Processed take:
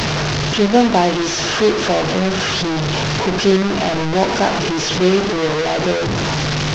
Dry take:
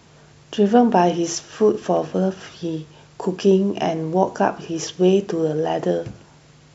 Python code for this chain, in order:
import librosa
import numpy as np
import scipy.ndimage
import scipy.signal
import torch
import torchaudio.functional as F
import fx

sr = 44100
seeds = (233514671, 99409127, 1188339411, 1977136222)

y = fx.delta_mod(x, sr, bps=32000, step_db=-14.0)
y = F.gain(torch.from_numpy(y), 1.5).numpy()